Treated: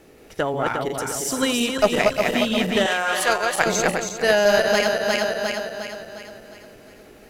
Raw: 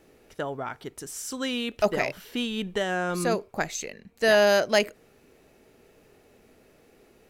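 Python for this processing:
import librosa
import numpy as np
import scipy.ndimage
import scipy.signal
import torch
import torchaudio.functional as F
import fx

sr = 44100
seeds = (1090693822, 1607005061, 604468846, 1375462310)

y = fx.reverse_delay_fb(x, sr, ms=178, feedback_pct=69, wet_db=-2.5)
y = fx.highpass(y, sr, hz=740.0, slope=12, at=(2.86, 3.66))
y = fx.rider(y, sr, range_db=4, speed_s=0.5)
y = fx.cheby_harmonics(y, sr, harmonics=(2, 7), levels_db=(-13, -32), full_scale_db=-8.0)
y = y * librosa.db_to_amplitude(5.0)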